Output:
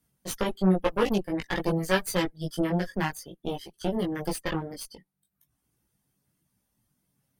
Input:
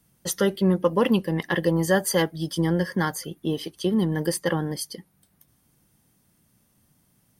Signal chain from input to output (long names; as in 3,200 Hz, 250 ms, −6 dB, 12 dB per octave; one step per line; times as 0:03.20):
harmonic generator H 3 −14 dB, 6 −19 dB, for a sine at −8 dBFS
reverb reduction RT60 0.81 s
multi-voice chorus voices 4, 0.5 Hz, delay 18 ms, depth 3.7 ms
level +2.5 dB